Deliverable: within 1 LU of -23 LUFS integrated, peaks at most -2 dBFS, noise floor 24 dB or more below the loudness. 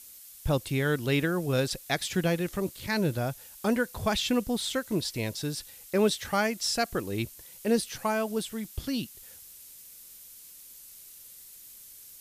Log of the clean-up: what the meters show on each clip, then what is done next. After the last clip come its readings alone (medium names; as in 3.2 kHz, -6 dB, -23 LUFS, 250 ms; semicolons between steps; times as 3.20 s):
noise floor -50 dBFS; noise floor target -54 dBFS; loudness -29.5 LUFS; peak level -12.0 dBFS; loudness target -23.0 LUFS
-> noise reduction 6 dB, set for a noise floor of -50 dBFS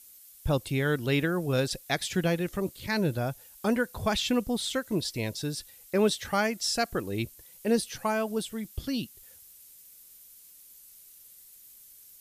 noise floor -53 dBFS; noise floor target -54 dBFS
-> noise reduction 6 dB, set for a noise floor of -53 dBFS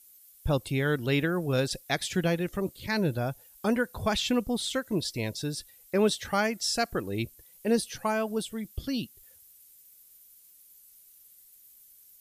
noise floor -57 dBFS; loudness -29.5 LUFS; peak level -12.0 dBFS; loudness target -23.0 LUFS
-> trim +6.5 dB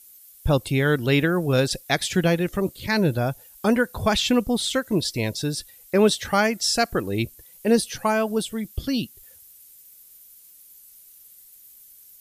loudness -23.0 LUFS; peak level -5.5 dBFS; noise floor -50 dBFS